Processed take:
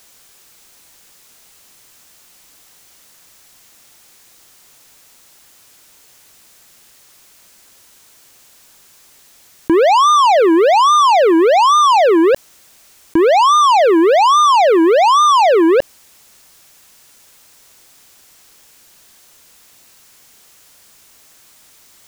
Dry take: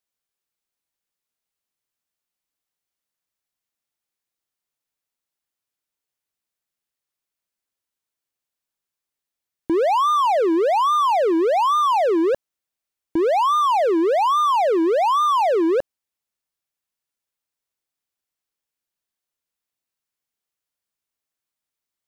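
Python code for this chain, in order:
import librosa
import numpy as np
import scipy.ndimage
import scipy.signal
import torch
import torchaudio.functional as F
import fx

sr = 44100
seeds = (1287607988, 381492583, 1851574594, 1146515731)

y = fx.leveller(x, sr, passes=3)
y = fx.peak_eq(y, sr, hz=6700.0, db=3.5, octaves=0.94)
y = fx.env_flatten(y, sr, amount_pct=50)
y = y * 10.0 ** (5.0 / 20.0)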